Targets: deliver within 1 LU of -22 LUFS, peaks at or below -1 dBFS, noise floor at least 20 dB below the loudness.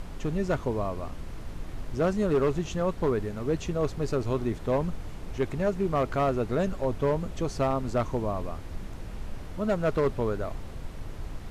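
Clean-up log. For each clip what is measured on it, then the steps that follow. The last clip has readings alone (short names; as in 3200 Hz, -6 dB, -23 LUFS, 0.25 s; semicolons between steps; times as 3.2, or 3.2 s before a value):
clipped 1.1%; flat tops at -19.0 dBFS; noise floor -39 dBFS; noise floor target -49 dBFS; loudness -29.0 LUFS; peak -19.0 dBFS; loudness target -22.0 LUFS
-> clip repair -19 dBFS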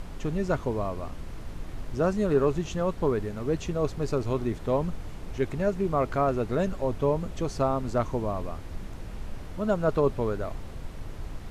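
clipped 0.0%; noise floor -39 dBFS; noise floor target -49 dBFS
-> noise print and reduce 10 dB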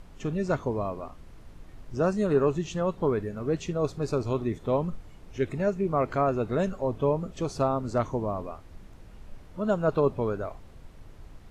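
noise floor -49 dBFS; loudness -28.5 LUFS; peak -12.5 dBFS; loudness target -22.0 LUFS
-> gain +6.5 dB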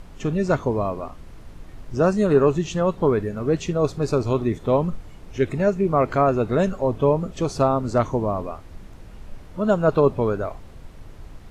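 loudness -22.0 LUFS; peak -6.0 dBFS; noise floor -42 dBFS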